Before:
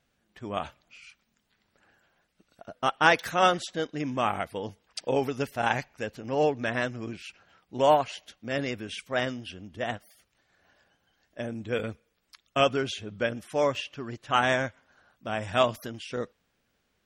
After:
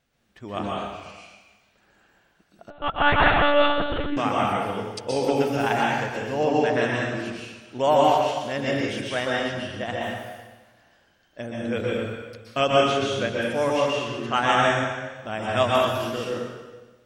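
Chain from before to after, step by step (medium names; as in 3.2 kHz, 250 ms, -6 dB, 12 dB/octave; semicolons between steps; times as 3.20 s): plate-style reverb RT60 1.3 s, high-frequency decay 0.95×, pre-delay 110 ms, DRR -4 dB; 2.70–4.17 s: monotone LPC vocoder at 8 kHz 290 Hz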